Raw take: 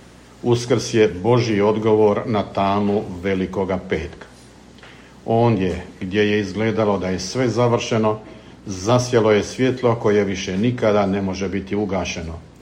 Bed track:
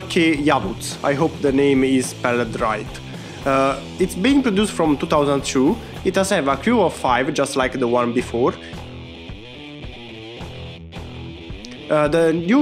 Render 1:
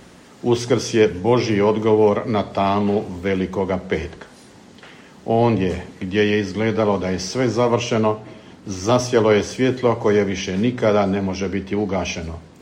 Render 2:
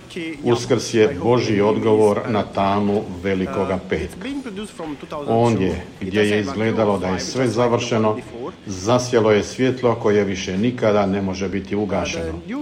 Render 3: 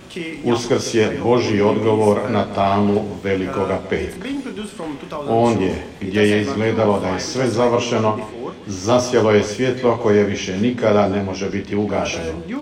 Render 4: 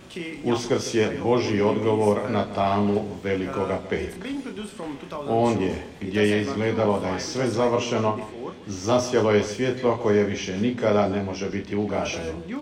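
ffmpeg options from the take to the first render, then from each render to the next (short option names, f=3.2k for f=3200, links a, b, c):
-af "bandreject=f=60:t=h:w=4,bandreject=f=120:t=h:w=4"
-filter_complex "[1:a]volume=-12dB[a];[0:a][a]amix=inputs=2:normalize=0"
-filter_complex "[0:a]asplit=2[a][b];[b]adelay=29,volume=-5.5dB[c];[a][c]amix=inputs=2:normalize=0,aecho=1:1:150:0.188"
-af "volume=-5.5dB"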